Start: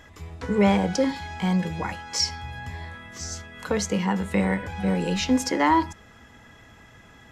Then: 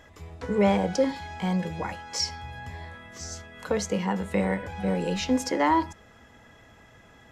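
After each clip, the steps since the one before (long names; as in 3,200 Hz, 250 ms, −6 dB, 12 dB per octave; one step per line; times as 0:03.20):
parametric band 570 Hz +5 dB 0.97 octaves
level −4 dB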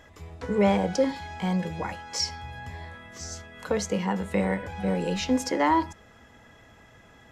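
no processing that can be heard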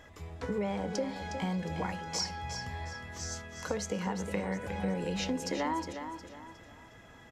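downward compressor 6 to 1, threshold −29 dBFS, peak gain reduction 12 dB
on a send: repeating echo 361 ms, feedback 36%, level −8.5 dB
on the sum: level −1.5 dB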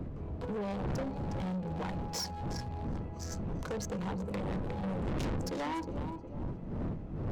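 adaptive Wiener filter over 25 samples
wind on the microphone 190 Hz −31 dBFS
soft clipping −35 dBFS, distortion −1 dB
level +3 dB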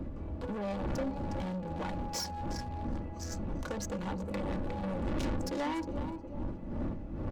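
comb filter 3.5 ms, depth 48%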